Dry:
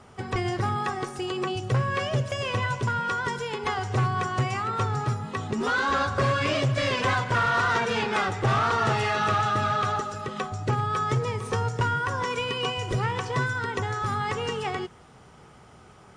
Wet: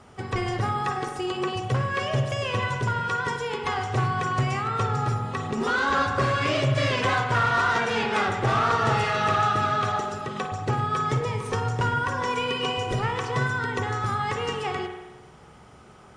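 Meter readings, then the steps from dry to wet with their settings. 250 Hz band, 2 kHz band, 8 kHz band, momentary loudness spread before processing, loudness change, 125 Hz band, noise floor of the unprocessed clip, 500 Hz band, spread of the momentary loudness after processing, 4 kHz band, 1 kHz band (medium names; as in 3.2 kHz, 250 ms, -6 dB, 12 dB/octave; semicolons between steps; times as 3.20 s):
+1.0 dB, +1.0 dB, 0.0 dB, 7 LU, +1.0 dB, +0.5 dB, -51 dBFS, +1.0 dB, 7 LU, +1.0 dB, +1.5 dB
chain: spring tank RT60 1.1 s, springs 44 ms, chirp 20 ms, DRR 5 dB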